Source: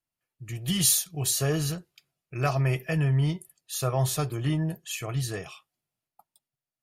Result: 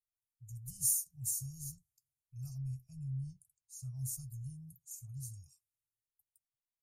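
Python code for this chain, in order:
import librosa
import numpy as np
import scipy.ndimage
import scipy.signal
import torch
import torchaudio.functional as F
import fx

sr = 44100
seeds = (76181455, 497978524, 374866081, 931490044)

y = scipy.signal.sosfilt(scipy.signal.cheby2(4, 40, [220.0, 3600.0], 'bandstop', fs=sr, output='sos'), x)
y = fx.air_absorb(y, sr, metres=61.0, at=(2.58, 3.95))
y = fx.notch_comb(y, sr, f0_hz=530.0, at=(4.53, 5.42))
y = F.gain(torch.from_numpy(y), -7.5).numpy()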